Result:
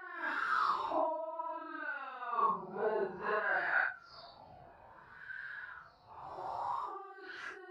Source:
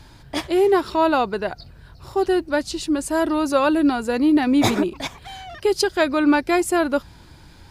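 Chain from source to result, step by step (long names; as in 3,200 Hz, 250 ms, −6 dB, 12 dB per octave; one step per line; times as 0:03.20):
compressor whose output falls as the input rises −25 dBFS, ratio −0.5
LFO wah 2.8 Hz 740–1,700 Hz, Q 5.2
extreme stretch with random phases 4.9×, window 0.05 s, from 0:00.75
level +4 dB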